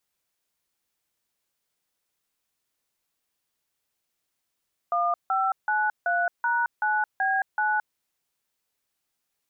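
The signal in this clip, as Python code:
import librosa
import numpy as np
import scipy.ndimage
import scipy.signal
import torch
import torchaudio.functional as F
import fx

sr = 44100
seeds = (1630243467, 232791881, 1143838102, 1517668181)

y = fx.dtmf(sr, digits='1593#9B9', tone_ms=220, gap_ms=160, level_db=-24.0)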